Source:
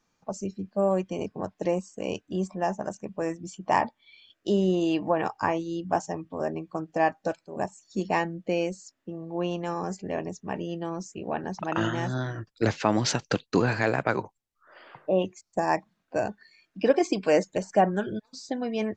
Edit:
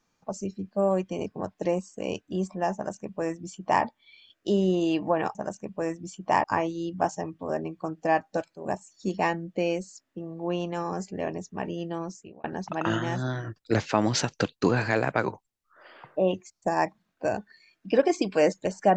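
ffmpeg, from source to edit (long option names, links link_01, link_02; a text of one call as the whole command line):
ffmpeg -i in.wav -filter_complex "[0:a]asplit=4[link_01][link_02][link_03][link_04];[link_01]atrim=end=5.352[link_05];[link_02]atrim=start=2.748:end=3.842[link_06];[link_03]atrim=start=5.348:end=11.35,asetpts=PTS-STARTPTS,afade=type=out:start_time=5.572:duration=0.43[link_07];[link_04]atrim=start=11.35,asetpts=PTS-STARTPTS,afade=type=in:duration=0.004:curve=hsin[link_08];[link_05][link_06]acrossfade=duration=0.004:curve1=hsin:curve2=hsin[link_09];[link_07][link_08]concat=n=2:v=0:a=1[link_10];[link_09][link_10]acrossfade=duration=0.004:curve1=hsin:curve2=hsin" out.wav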